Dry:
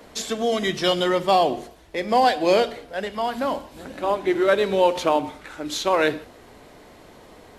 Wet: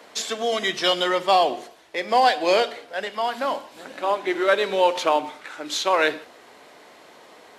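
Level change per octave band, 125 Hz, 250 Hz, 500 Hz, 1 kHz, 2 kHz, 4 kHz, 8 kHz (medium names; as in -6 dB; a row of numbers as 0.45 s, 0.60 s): under -10 dB, -5.5 dB, -1.5 dB, +1.0 dB, +2.5 dB, +2.5 dB, +1.0 dB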